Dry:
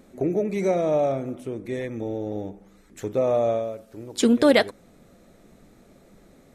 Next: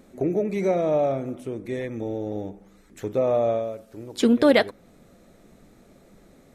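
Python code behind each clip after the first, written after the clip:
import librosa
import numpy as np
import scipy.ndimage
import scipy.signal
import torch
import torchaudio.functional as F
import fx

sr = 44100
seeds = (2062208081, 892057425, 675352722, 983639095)

y = fx.dynamic_eq(x, sr, hz=7800.0, q=0.96, threshold_db=-50.0, ratio=4.0, max_db=-7)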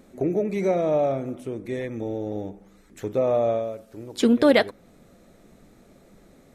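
y = x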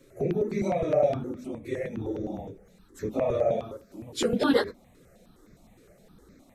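y = fx.phase_scramble(x, sr, seeds[0], window_ms=50)
y = fx.phaser_held(y, sr, hz=9.7, low_hz=210.0, high_hz=3000.0)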